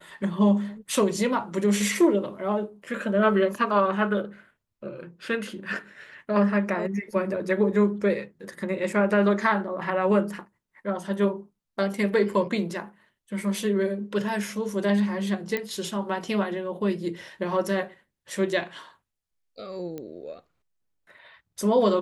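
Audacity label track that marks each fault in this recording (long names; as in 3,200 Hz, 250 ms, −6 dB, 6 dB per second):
15.570000	15.570000	click −14 dBFS
19.980000	19.980000	click −23 dBFS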